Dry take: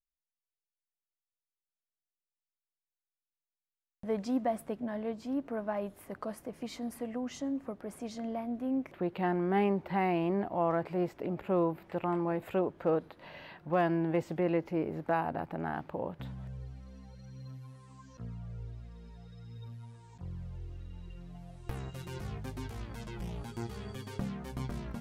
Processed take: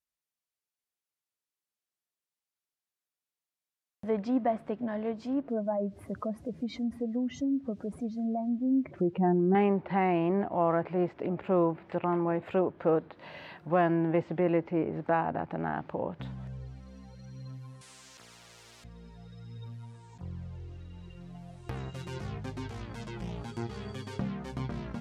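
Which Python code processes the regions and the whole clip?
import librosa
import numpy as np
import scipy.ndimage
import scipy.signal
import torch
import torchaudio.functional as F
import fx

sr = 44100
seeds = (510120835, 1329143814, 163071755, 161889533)

y = fx.chain(x, sr, fx.spec_expand(power=1.8),
    fx.peak_eq(hz=69.0, db=12.5, octaves=2.2),
    fx.quant_dither(seeds[0], bits=12, dither='triangular'), at=(5.48, 9.55))
y = fx.chain(y, sr, fx.low_shelf(hz=460.0, db=-9.0),
    fx.spectral_comp(ratio=4.0), at=(17.81, 18.84))
y = fx.env_lowpass_down(y, sr, base_hz=2800.0, full_db=-30.5)
y = scipy.signal.sosfilt(scipy.signal.butter(2, 73.0, 'highpass', fs=sr, output='sos'), y)
y = y * 10.0 ** (3.0 / 20.0)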